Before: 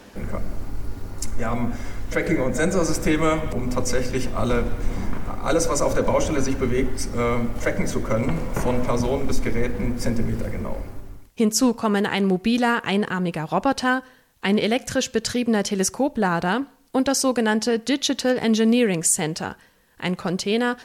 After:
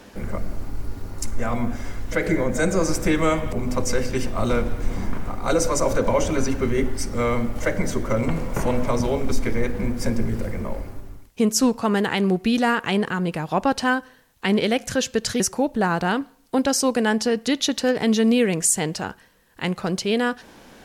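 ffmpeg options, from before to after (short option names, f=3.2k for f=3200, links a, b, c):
-filter_complex "[0:a]asplit=2[a][b];[a]atrim=end=15.402[c];[b]atrim=start=15.808[d];[c][d]acrossfade=d=0.004:c1=hsin:c2=hsin"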